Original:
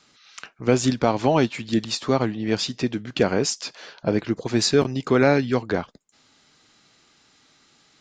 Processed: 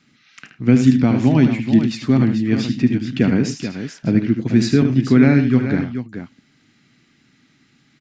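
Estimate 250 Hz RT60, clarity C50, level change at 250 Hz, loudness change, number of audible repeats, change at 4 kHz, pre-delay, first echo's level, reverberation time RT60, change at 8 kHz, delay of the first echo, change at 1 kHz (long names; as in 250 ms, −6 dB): no reverb audible, no reverb audible, +9.5 dB, +6.0 dB, 3, −4.0 dB, no reverb audible, −8.5 dB, no reverb audible, −6.0 dB, 76 ms, −5.5 dB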